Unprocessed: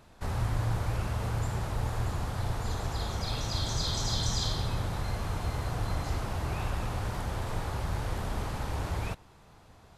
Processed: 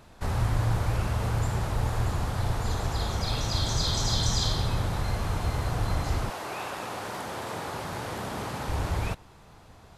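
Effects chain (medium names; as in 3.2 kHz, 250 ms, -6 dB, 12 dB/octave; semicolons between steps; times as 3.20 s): 6.29–8.67 s: high-pass 400 Hz -> 130 Hz 12 dB/octave; trim +4 dB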